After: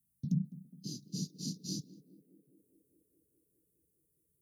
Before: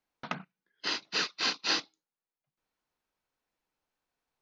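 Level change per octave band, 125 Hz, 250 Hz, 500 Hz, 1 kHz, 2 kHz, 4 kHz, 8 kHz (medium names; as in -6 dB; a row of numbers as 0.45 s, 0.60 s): +15.5 dB, +7.0 dB, -15.0 dB, under -40 dB, under -40 dB, -15.5 dB, -3.5 dB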